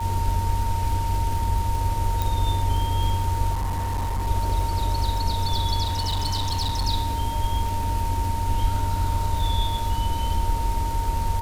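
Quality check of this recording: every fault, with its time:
surface crackle 110 per second −29 dBFS
whistle 920 Hz −28 dBFS
0:02.22: click
0:03.53–0:04.28: clipping −22 dBFS
0:05.83–0:06.87: clipping −20.5 dBFS

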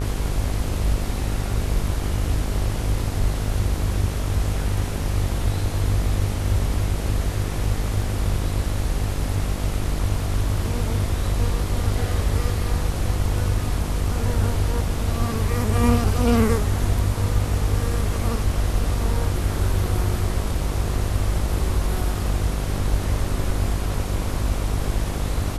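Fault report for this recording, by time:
mains buzz 50 Hz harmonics 28 −26 dBFS

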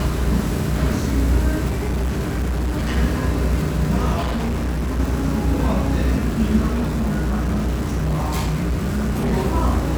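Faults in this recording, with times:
mains buzz 60 Hz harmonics 12 −23 dBFS
surface crackle 250 per second −27 dBFS
0:01.68–0:02.98: clipping −18 dBFS
0:04.20–0:05.00: clipping −19 dBFS
0:06.72–0:09.34: clipping −17 dBFS

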